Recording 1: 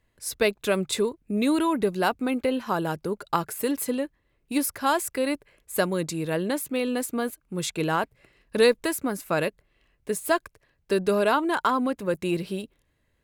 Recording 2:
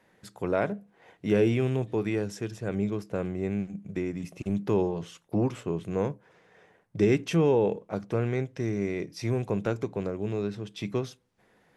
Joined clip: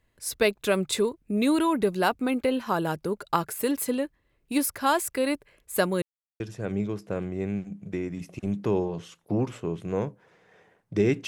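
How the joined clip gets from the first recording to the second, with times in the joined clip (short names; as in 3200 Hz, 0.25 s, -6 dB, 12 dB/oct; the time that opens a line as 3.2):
recording 1
6.02–6.4 mute
6.4 switch to recording 2 from 2.43 s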